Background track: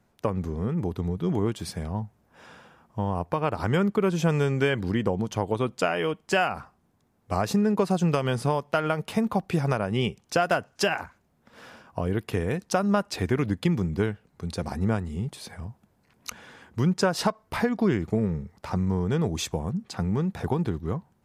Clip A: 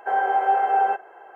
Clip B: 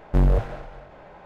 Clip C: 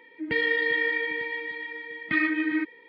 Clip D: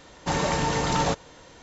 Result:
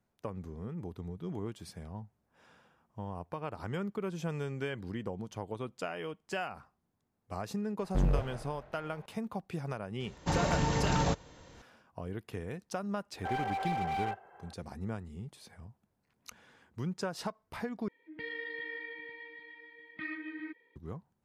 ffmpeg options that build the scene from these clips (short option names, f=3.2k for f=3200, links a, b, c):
-filter_complex "[0:a]volume=-13dB[a];[4:a]equalizer=f=65:w=0.3:g=8.5[b];[1:a]asoftclip=type=hard:threshold=-22dB[c];[a]asplit=2[d][e];[d]atrim=end=17.884[f];[3:a]atrim=end=2.88,asetpts=PTS-STARTPTS,volume=-16dB[g];[e]atrim=start=20.756[h];[2:a]atrim=end=1.25,asetpts=PTS-STARTPTS,volume=-10dB,afade=t=in:d=0.004:c=hsin,afade=t=out:st=1.246:d=0.004:c=hsin,adelay=7810[i];[b]atrim=end=1.62,asetpts=PTS-STARTPTS,volume=-8dB,afade=t=in:d=0.004:c=hsin,afade=t=out:st=1.616:d=0.004:c=hsin,adelay=10000[j];[c]atrim=end=1.35,asetpts=PTS-STARTPTS,volume=-10.5dB,afade=t=in:d=0.004:c=hsin,afade=t=out:st=1.346:d=0.004:c=hsin,adelay=13180[k];[f][g]acrossfade=d=0.004:c1=hsin:c2=hsin[l];[l][h]acrossfade=d=0.004:c1=hsin:c2=hsin[m];[m][i][j][k]amix=inputs=4:normalize=0"